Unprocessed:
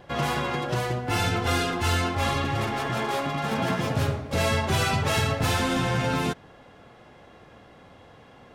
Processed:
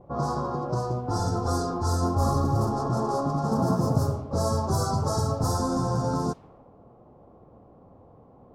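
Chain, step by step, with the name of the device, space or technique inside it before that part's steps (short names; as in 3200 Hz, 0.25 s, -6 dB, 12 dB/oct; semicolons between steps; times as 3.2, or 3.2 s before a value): Chebyshev band-stop 1200–5000 Hz, order 3; 2.02–3.98 low shelf 480 Hz +5 dB; cassette deck with a dynamic noise filter (white noise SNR 34 dB; low-pass opened by the level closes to 740 Hz, open at -20 dBFS)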